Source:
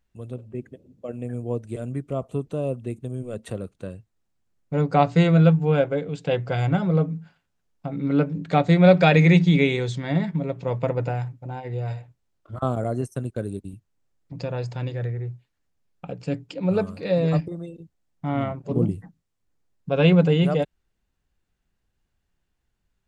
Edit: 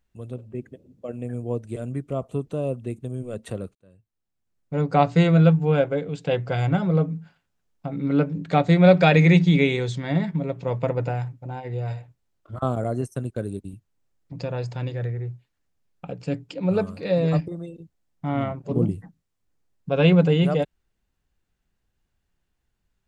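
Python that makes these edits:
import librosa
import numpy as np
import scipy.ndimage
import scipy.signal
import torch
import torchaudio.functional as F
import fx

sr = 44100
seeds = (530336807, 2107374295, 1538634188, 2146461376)

y = fx.edit(x, sr, fx.fade_in_span(start_s=3.75, length_s=1.24), tone=tone)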